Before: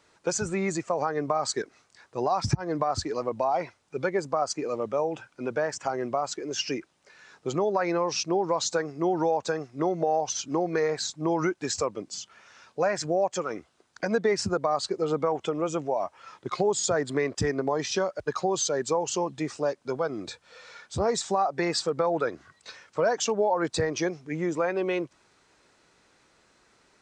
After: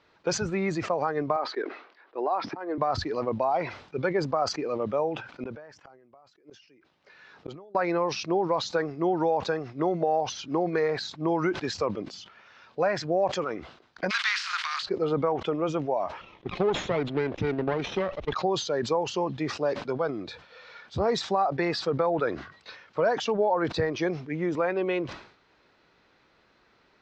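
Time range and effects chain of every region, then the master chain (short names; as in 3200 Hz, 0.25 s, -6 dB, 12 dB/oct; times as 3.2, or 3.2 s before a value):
1.36–2.78 Chebyshev band-pass 310–7600 Hz, order 3 + air absorption 280 m
5.18–7.75 HPF 44 Hz 6 dB/oct + flipped gate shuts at -25 dBFS, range -30 dB + sustainer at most 61 dB/s
14.09–14.82 spectral contrast lowered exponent 0.46 + steep high-pass 1200 Hz + transient shaper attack +3 dB, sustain +11 dB
16.21–18.33 minimum comb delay 0.31 ms + HPF 85 Hz 6 dB/oct + high shelf 5000 Hz -10.5 dB
whole clip: LPF 4400 Hz 24 dB/oct; sustainer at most 100 dB/s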